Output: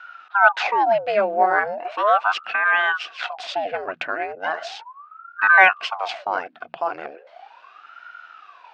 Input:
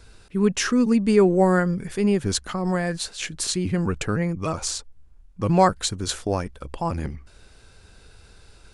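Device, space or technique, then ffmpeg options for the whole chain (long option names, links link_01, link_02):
voice changer toy: -af "aeval=exprs='val(0)*sin(2*PI*780*n/s+780*0.8/0.37*sin(2*PI*0.37*n/s))':channel_layout=same,highpass=600,equalizer=frequency=720:width_type=q:width=4:gain=10,equalizer=frequency=1500:width_type=q:width=4:gain=10,equalizer=frequency=2600:width_type=q:width=4:gain=6,lowpass=frequency=4000:width=0.5412,lowpass=frequency=4000:width=1.3066,volume=2dB"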